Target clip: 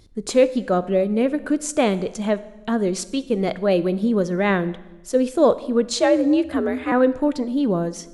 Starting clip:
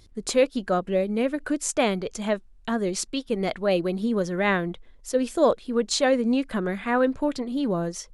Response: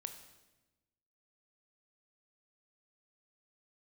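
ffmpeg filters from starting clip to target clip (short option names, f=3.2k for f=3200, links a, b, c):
-filter_complex "[0:a]equalizer=f=260:w=0.37:g=5.5,asettb=1/sr,asplit=3[a][b][c];[a]atrim=end=6.004[d];[b]atrim=start=6:end=6.92,asetpts=PTS-STARTPTS,afade=t=in:d=0.004:c=qsin,afade=t=out:st=0.916:d=0.004:c=qsin,afreqshift=57[e];[c]atrim=start=6.916[f];[d][e]acrossfade=d=0.004:c1=hsin:c2=qsin[g];[g][f]acrossfade=d=0.004:c1=qsin:c2=hsin,asplit=2[h][i];[1:a]atrim=start_sample=2205[j];[i][j]afir=irnorm=-1:irlink=0,volume=0dB[k];[h][k]amix=inputs=2:normalize=0,volume=-4.5dB"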